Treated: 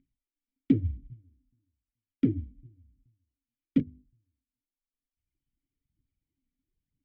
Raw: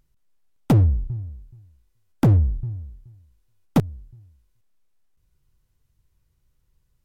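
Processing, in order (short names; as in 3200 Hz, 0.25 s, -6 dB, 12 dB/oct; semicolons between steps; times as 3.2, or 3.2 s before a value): notches 50/100/150/200/250/300/350/400/450/500 Hz; reverb removal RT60 1.5 s; tilt -3 dB/oct; phaser 1 Hz, delay 4.5 ms, feedback 56%; vowel filter i; gain +1 dB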